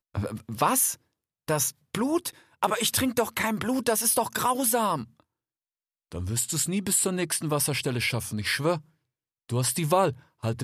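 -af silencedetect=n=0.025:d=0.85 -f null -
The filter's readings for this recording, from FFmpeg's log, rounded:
silence_start: 5.03
silence_end: 6.12 | silence_duration: 1.08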